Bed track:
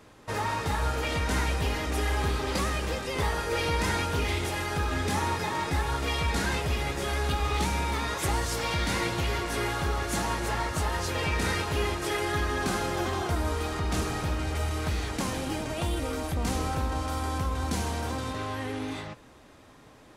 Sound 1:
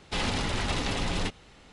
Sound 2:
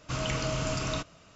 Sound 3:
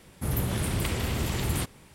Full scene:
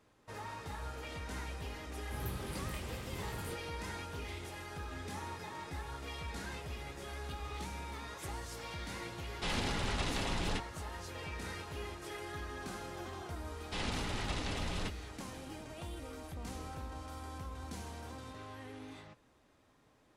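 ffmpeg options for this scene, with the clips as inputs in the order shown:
ffmpeg -i bed.wav -i cue0.wav -i cue1.wav -i cue2.wav -filter_complex "[1:a]asplit=2[link_01][link_02];[0:a]volume=-15dB[link_03];[3:a]flanger=delay=18:depth=5.5:speed=2.8,atrim=end=1.94,asetpts=PTS-STARTPTS,volume=-12dB,afade=type=in:duration=0.004:curve=hsin,afade=type=out:start_time=1.936:duration=0.004:curve=hsin,adelay=1890[link_04];[link_01]atrim=end=1.72,asetpts=PTS-STARTPTS,volume=-6.5dB,afade=type=in:duration=0.004:curve=hsin,afade=type=out:start_time=1.716:duration=0.004:curve=hsin,adelay=410130S[link_05];[link_02]atrim=end=1.72,asetpts=PTS-STARTPTS,volume=-9dB,afade=type=in:duration=0.004:curve=hsin,afade=type=out:start_time=1.716:duration=0.004:curve=hsin,adelay=13600[link_06];[link_03][link_04][link_05][link_06]amix=inputs=4:normalize=0" out.wav

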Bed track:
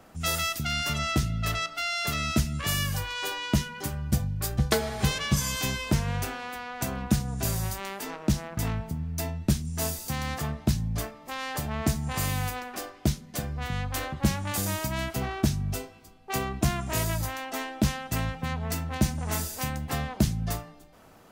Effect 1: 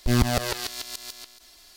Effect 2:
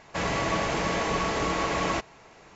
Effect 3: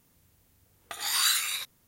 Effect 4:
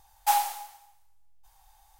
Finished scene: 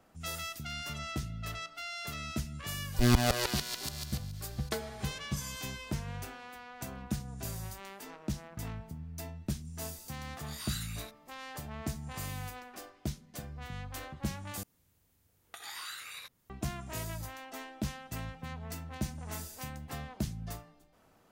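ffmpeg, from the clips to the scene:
ffmpeg -i bed.wav -i cue0.wav -i cue1.wav -i cue2.wav -filter_complex "[3:a]asplit=2[link_01][link_02];[0:a]volume=-11dB[link_03];[link_02]acrossover=split=740|3100[link_04][link_05][link_06];[link_04]acompressor=threshold=-53dB:ratio=4[link_07];[link_05]acompressor=threshold=-38dB:ratio=4[link_08];[link_06]acompressor=threshold=-43dB:ratio=4[link_09];[link_07][link_08][link_09]amix=inputs=3:normalize=0[link_10];[link_03]asplit=2[link_11][link_12];[link_11]atrim=end=14.634[link_13];[link_10]atrim=end=1.87,asetpts=PTS-STARTPTS,volume=-6.5dB[link_14];[link_12]atrim=start=16.496[link_15];[1:a]atrim=end=1.76,asetpts=PTS-STARTPTS,volume=-3.5dB,afade=type=in:duration=0.004:curve=hsin,afade=type=out:start_time=1.756:duration=0.004:curve=hsin,adelay=2930[link_16];[link_01]atrim=end=1.87,asetpts=PTS-STARTPTS,volume=-16dB,afade=type=in:duration=0.004:curve=hsin,afade=type=out:start_time=1.866:duration=0.004:curve=hsin,adelay=417186S[link_17];[link_13][link_14]acrossfade=duration=0.004:curve1=hsin:curve2=hsin[link_18];[link_18][link_15]acrossfade=duration=0.004:curve1=hsin:curve2=hsin[link_19];[link_19][link_16][link_17]amix=inputs=3:normalize=0" out.wav

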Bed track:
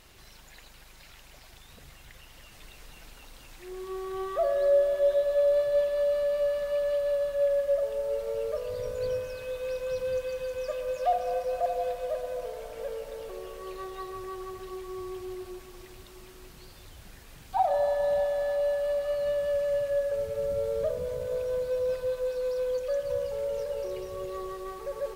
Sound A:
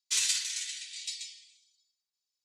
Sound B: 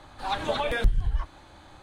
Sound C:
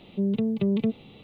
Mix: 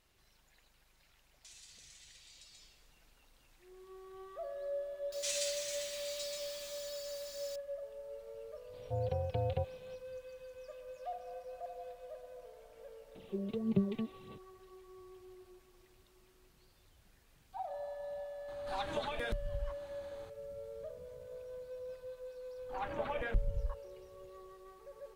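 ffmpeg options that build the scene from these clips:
ffmpeg -i bed.wav -i cue0.wav -i cue1.wav -i cue2.wav -filter_complex "[1:a]asplit=2[link_01][link_02];[3:a]asplit=2[link_03][link_04];[2:a]asplit=2[link_05][link_06];[0:a]volume=-17dB[link_07];[link_01]acompressor=threshold=-41dB:ratio=6:attack=3.2:release=140:knee=1:detection=peak[link_08];[link_02]aeval=exprs='val(0)+0.5*0.0266*sgn(val(0))':channel_layout=same[link_09];[link_03]aeval=exprs='val(0)*sin(2*PI*310*n/s)':channel_layout=same[link_10];[link_04]aphaser=in_gain=1:out_gain=1:delay=3.5:decay=0.67:speed=1.7:type=sinusoidal[link_11];[link_05]acompressor=threshold=-27dB:ratio=6:attack=13:release=517:knee=6:detection=peak[link_12];[link_06]afwtdn=0.0158[link_13];[link_08]atrim=end=2.44,asetpts=PTS-STARTPTS,volume=-13.5dB,afade=type=in:duration=0.004:curve=hsin,afade=type=out:start_time=2.436:duration=0.004:curve=hsin,adelay=1340[link_14];[link_09]atrim=end=2.44,asetpts=PTS-STARTPTS,volume=-11.5dB,afade=type=in:duration=0.004:curve=hsin,afade=type=out:start_time=2.436:duration=0.004:curve=hsin,adelay=5120[link_15];[link_10]atrim=end=1.23,asetpts=PTS-STARTPTS,volume=-7.5dB,afade=type=in:duration=0.004:curve=hsin,afade=type=out:start_time=1.226:duration=0.004:curve=hsin,adelay=8730[link_16];[link_11]atrim=end=1.23,asetpts=PTS-STARTPTS,volume=-11.5dB,afade=type=in:duration=0.004:curve=hsin,afade=type=out:start_time=1.226:duration=0.004:curve=hsin,adelay=13150[link_17];[link_12]atrim=end=1.82,asetpts=PTS-STARTPTS,volume=-6.5dB,afade=type=in:duration=0.004:curve=hsin,afade=type=out:start_time=1.816:duration=0.004:curve=hsin,adelay=18480[link_18];[link_13]atrim=end=1.82,asetpts=PTS-STARTPTS,volume=-10.5dB,afade=type=in:duration=0.004:curve=hsin,afade=type=out:start_time=1.816:duration=0.004:curve=hsin,adelay=22500[link_19];[link_07][link_14][link_15][link_16][link_17][link_18][link_19]amix=inputs=7:normalize=0" out.wav

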